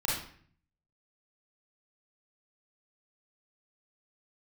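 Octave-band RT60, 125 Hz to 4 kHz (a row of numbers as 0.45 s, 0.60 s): 0.95 s, 0.75 s, 0.55 s, 0.50 s, 0.55 s, 0.45 s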